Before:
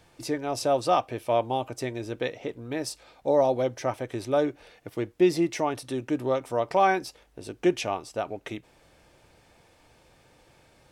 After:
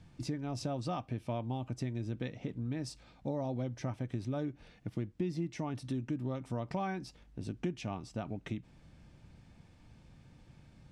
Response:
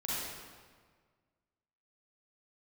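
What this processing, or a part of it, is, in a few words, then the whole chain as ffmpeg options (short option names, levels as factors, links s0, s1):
jukebox: -af "lowpass=7700,lowshelf=f=300:t=q:w=1.5:g=12.5,acompressor=threshold=0.0501:ratio=4,volume=0.422"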